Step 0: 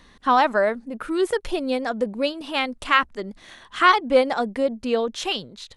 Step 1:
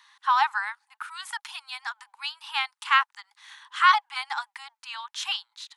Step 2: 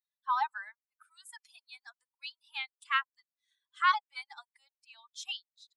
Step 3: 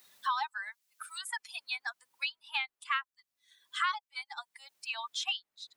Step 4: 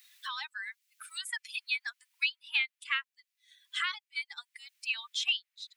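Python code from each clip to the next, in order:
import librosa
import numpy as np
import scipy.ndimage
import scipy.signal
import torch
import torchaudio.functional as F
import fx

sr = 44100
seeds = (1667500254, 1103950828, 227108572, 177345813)

y1 = scipy.signal.sosfilt(scipy.signal.cheby1(8, 1.0, 820.0, 'highpass', fs=sr, output='sos'), x)
y1 = y1 * 10.0 ** (-1.5 / 20.0)
y2 = fx.bin_expand(y1, sr, power=2.0)
y2 = y2 * 10.0 ** (-6.0 / 20.0)
y3 = fx.band_squash(y2, sr, depth_pct=100)
y3 = y3 * 10.0 ** (2.5 / 20.0)
y4 = fx.highpass_res(y3, sr, hz=2200.0, q=1.8)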